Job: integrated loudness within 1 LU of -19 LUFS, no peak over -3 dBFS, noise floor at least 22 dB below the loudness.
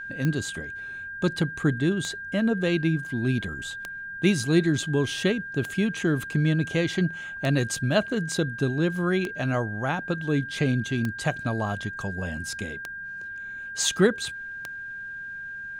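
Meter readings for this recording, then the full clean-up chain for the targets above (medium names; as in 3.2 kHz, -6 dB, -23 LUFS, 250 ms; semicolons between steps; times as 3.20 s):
clicks found 9; steady tone 1.6 kHz; tone level -34 dBFS; loudness -27.0 LUFS; peak level -8.0 dBFS; loudness target -19.0 LUFS
-> de-click; band-stop 1.6 kHz, Q 30; trim +8 dB; peak limiter -3 dBFS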